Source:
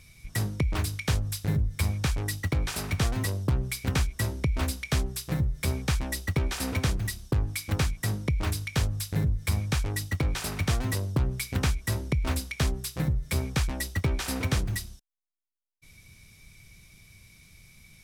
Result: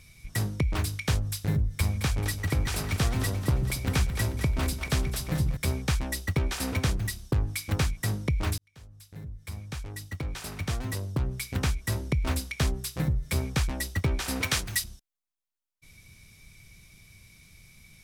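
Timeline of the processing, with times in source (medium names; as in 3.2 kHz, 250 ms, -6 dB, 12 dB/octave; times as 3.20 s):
1.66–5.57 s: two-band feedback delay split 320 Hz, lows 139 ms, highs 218 ms, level -9 dB
8.58–12.15 s: fade in
14.42–14.84 s: tilt shelf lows -8 dB, about 790 Hz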